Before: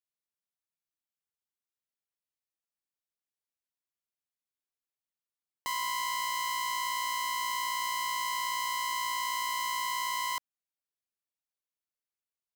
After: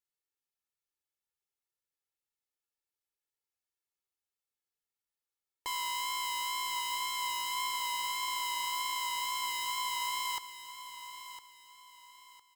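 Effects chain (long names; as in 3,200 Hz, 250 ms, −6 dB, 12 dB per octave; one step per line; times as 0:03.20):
comb filter 2.3 ms, depth 90%
tape wow and flutter 27 cents
on a send: repeating echo 1,007 ms, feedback 33%, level −12 dB
on the sum: level −3.5 dB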